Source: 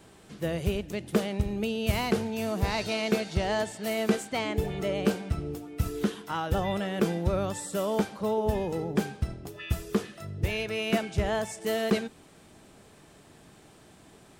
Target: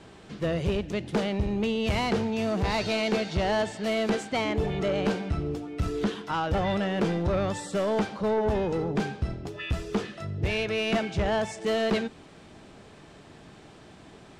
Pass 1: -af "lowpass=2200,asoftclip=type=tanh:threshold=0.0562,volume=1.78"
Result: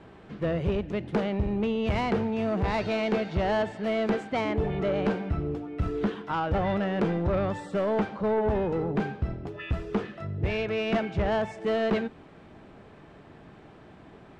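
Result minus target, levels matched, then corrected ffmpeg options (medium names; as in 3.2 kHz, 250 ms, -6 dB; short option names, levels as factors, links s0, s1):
4 kHz band -6.0 dB
-af "lowpass=5300,asoftclip=type=tanh:threshold=0.0562,volume=1.78"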